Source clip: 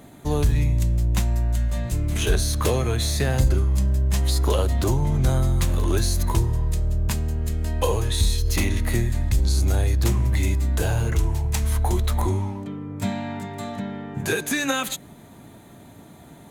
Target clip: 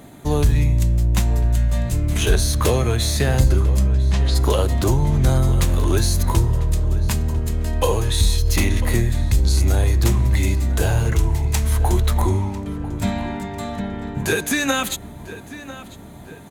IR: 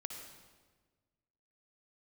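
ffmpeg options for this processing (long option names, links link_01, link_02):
-filter_complex "[0:a]asplit=3[link_01][link_02][link_03];[link_01]afade=type=out:start_time=3.87:duration=0.02[link_04];[link_02]lowpass=4500,afade=type=in:start_time=3.87:duration=0.02,afade=type=out:start_time=4.34:duration=0.02[link_05];[link_03]afade=type=in:start_time=4.34:duration=0.02[link_06];[link_04][link_05][link_06]amix=inputs=3:normalize=0,asplit=2[link_07][link_08];[link_08]adelay=997,lowpass=frequency=3500:poles=1,volume=-15dB,asplit=2[link_09][link_10];[link_10]adelay=997,lowpass=frequency=3500:poles=1,volume=0.52,asplit=2[link_11][link_12];[link_12]adelay=997,lowpass=frequency=3500:poles=1,volume=0.52,asplit=2[link_13][link_14];[link_14]adelay=997,lowpass=frequency=3500:poles=1,volume=0.52,asplit=2[link_15][link_16];[link_16]adelay=997,lowpass=frequency=3500:poles=1,volume=0.52[link_17];[link_07][link_09][link_11][link_13][link_15][link_17]amix=inputs=6:normalize=0,volume=3.5dB"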